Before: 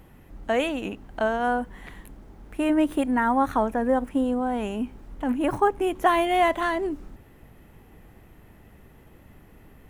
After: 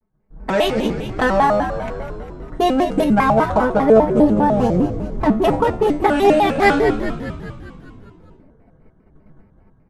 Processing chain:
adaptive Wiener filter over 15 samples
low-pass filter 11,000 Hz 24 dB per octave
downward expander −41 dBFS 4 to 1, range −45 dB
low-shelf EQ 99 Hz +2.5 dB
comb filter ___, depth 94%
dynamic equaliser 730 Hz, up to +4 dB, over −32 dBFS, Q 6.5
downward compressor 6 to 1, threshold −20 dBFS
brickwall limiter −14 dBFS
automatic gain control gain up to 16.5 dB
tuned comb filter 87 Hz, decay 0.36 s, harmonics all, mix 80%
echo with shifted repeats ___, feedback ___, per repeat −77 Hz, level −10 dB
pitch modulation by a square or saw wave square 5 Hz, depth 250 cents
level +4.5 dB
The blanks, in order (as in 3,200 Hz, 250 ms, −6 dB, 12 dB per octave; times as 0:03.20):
5.3 ms, 201 ms, 62%